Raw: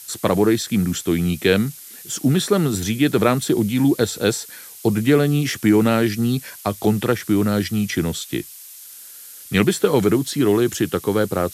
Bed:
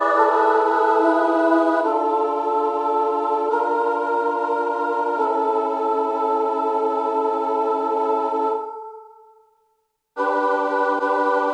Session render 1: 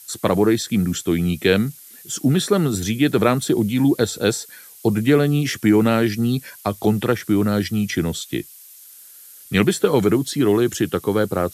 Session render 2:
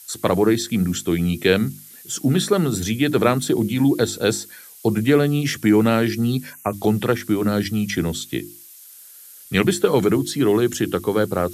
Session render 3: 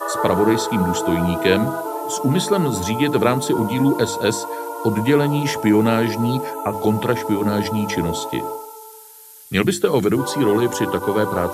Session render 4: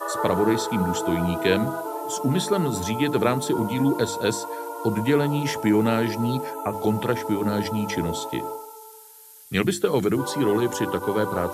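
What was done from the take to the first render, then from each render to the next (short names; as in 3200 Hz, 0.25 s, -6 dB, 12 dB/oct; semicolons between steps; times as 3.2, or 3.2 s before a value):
denoiser 6 dB, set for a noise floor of -40 dBFS
6.53–6.73 spectral delete 2900–5800 Hz; notches 50/100/150/200/250/300/350 Hz
add bed -6.5 dB
gain -4.5 dB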